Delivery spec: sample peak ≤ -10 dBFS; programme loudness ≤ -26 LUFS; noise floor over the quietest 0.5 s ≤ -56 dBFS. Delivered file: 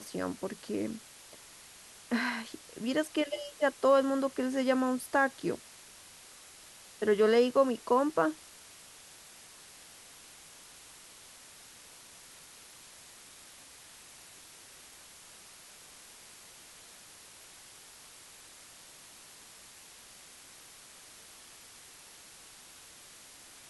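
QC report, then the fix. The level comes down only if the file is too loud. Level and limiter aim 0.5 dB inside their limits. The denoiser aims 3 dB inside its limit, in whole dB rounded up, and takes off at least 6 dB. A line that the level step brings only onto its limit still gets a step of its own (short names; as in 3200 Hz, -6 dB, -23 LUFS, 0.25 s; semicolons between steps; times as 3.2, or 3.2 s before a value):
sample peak -13.5 dBFS: OK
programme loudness -30.0 LUFS: OK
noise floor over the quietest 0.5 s -53 dBFS: fail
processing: denoiser 6 dB, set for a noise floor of -53 dBFS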